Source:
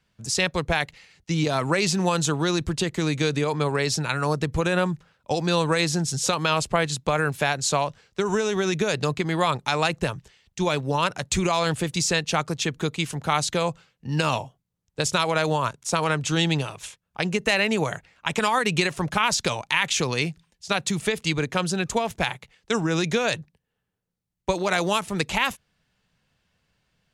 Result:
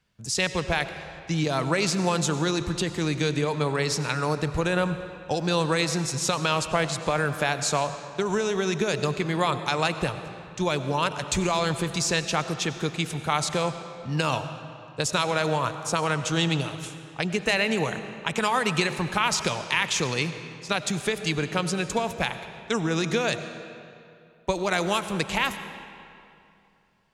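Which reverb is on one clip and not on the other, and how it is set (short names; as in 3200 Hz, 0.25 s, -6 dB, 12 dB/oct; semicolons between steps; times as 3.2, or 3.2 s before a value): digital reverb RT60 2.6 s, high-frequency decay 0.75×, pre-delay 55 ms, DRR 10 dB; gain -2 dB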